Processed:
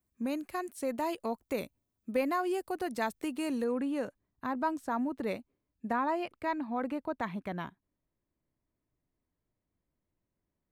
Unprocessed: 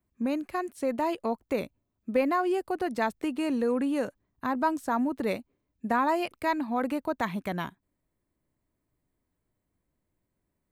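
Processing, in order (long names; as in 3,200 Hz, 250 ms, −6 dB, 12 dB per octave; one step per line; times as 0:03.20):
high-shelf EQ 5,100 Hz +9 dB, from 0:03.64 −4 dB, from 0:05.93 −12 dB
level −5 dB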